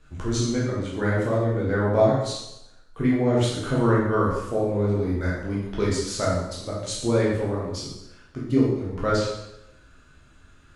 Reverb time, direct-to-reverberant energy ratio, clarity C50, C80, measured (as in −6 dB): 0.85 s, −6.5 dB, 1.0 dB, 4.5 dB